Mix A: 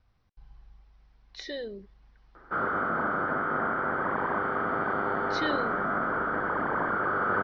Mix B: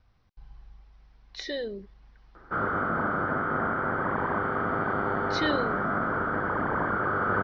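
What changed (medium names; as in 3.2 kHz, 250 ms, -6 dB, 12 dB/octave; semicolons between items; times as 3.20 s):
speech +3.5 dB; background: remove high-pass 240 Hz 6 dB/octave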